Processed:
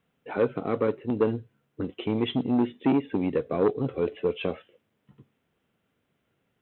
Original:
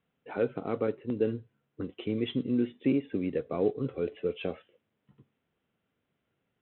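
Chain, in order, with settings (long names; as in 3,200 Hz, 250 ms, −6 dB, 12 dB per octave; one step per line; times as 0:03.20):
saturating transformer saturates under 520 Hz
level +5.5 dB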